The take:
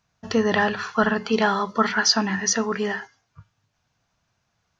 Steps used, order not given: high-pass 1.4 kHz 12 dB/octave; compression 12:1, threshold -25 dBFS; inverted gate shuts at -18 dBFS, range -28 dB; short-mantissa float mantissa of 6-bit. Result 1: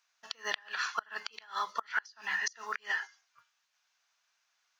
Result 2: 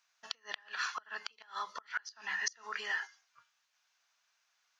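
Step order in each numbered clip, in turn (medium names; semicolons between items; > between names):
short-mantissa float > high-pass > compression > inverted gate; compression > inverted gate > high-pass > short-mantissa float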